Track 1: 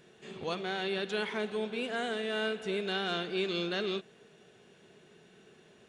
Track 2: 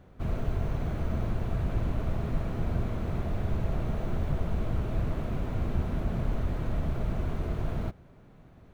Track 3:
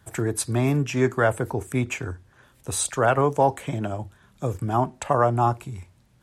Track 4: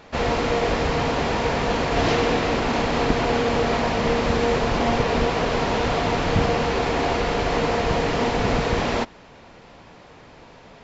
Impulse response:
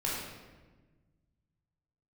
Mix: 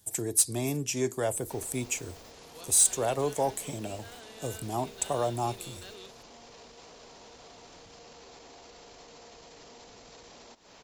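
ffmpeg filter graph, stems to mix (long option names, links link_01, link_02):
-filter_complex "[0:a]adelay=2100,volume=-16dB[link_01];[1:a]acompressor=threshold=-34dB:ratio=6,aexciter=amount=4.7:drive=4.7:freq=6000,adelay=1150,volume=-15.5dB[link_02];[2:a]equalizer=frequency=1400:width=1.4:gain=-13.5,volume=-5dB,asplit=2[link_03][link_04];[3:a]acrossover=split=1300|2800|7700[link_05][link_06][link_07][link_08];[link_05]acompressor=threshold=-29dB:ratio=4[link_09];[link_06]acompressor=threshold=-49dB:ratio=4[link_10];[link_07]acompressor=threshold=-44dB:ratio=4[link_11];[link_08]acompressor=threshold=-58dB:ratio=4[link_12];[link_09][link_10][link_11][link_12]amix=inputs=4:normalize=0,alimiter=level_in=4dB:limit=-24dB:level=0:latency=1:release=30,volume=-4dB,acompressor=threshold=-45dB:ratio=5,adelay=1500,volume=-4.5dB[link_13];[link_04]apad=whole_len=435829[link_14];[link_02][link_14]sidechaingate=range=-33dB:threshold=-54dB:ratio=16:detection=peak[link_15];[link_01][link_15][link_03][link_13]amix=inputs=4:normalize=0,bass=frequency=250:gain=-7,treble=frequency=4000:gain=14,asoftclip=type=tanh:threshold=-14dB"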